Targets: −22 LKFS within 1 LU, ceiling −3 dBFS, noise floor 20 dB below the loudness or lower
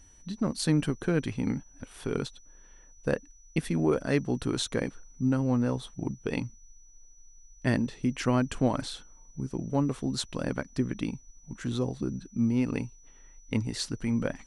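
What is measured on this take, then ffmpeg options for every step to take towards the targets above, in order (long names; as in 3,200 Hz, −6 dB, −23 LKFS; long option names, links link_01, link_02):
interfering tone 5,900 Hz; level of the tone −57 dBFS; integrated loudness −30.5 LKFS; sample peak −10.0 dBFS; target loudness −22.0 LKFS
→ -af "bandreject=frequency=5900:width=30"
-af "volume=8.5dB,alimiter=limit=-3dB:level=0:latency=1"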